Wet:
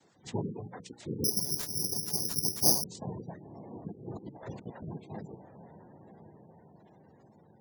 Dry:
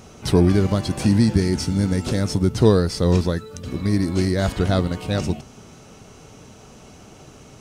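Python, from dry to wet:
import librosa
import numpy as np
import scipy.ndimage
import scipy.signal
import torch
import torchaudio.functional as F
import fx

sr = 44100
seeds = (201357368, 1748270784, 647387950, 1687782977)

y = fx.noise_vocoder(x, sr, seeds[0], bands=6)
y = fx.dereverb_blind(y, sr, rt60_s=1.5)
y = fx.hum_notches(y, sr, base_hz=60, count=10)
y = fx.echo_diffused(y, sr, ms=1032, feedback_pct=52, wet_db=-11)
y = fx.spec_gate(y, sr, threshold_db=-20, keep='strong')
y = fx.resample_bad(y, sr, factor=8, down='none', up='zero_stuff', at=(1.24, 2.84))
y = fx.over_compress(y, sr, threshold_db=-29.0, ratio=-0.5, at=(3.91, 4.97), fade=0.02)
y = y * 10.0 ** (-17.0 / 20.0)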